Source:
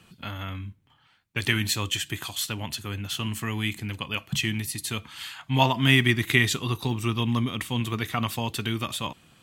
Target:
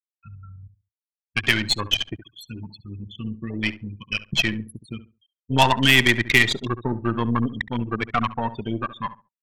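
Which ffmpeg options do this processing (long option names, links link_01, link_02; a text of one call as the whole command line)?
ffmpeg -i in.wav -filter_complex "[0:a]afftfilt=real='re*gte(hypot(re,im),0.0891)':imag='im*gte(hypot(re,im),0.0891)':win_size=1024:overlap=0.75,highpass=frequency=390:poles=1,afwtdn=0.0178,asplit=2[link_01][link_02];[link_02]alimiter=limit=-16dB:level=0:latency=1:release=151,volume=0dB[link_03];[link_01][link_03]amix=inputs=2:normalize=0,aeval=exprs='0.75*(cos(1*acos(clip(val(0)/0.75,-1,1)))-cos(1*PI/2))+0.119*(cos(6*acos(clip(val(0)/0.75,-1,1)))-cos(6*PI/2))+0.133*(cos(8*acos(clip(val(0)/0.75,-1,1)))-cos(8*PI/2))':channel_layout=same,asplit=2[link_04][link_05];[link_05]adelay=69,lowpass=frequency=1500:poles=1,volume=-13dB,asplit=2[link_06][link_07];[link_07]adelay=69,lowpass=frequency=1500:poles=1,volume=0.22,asplit=2[link_08][link_09];[link_09]adelay=69,lowpass=frequency=1500:poles=1,volume=0.22[link_10];[link_04][link_06][link_08][link_10]amix=inputs=4:normalize=0,volume=2.5dB" out.wav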